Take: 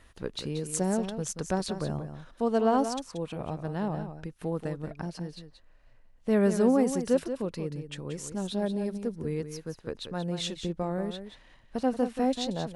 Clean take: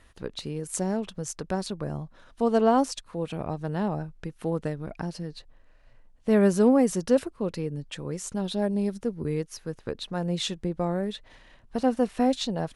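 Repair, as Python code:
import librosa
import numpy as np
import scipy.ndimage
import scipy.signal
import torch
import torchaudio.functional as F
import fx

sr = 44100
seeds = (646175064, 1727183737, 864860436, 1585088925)

y = fx.fix_echo_inverse(x, sr, delay_ms=181, level_db=-9.5)
y = fx.gain(y, sr, db=fx.steps((0.0, 0.0), (2.34, 3.5)))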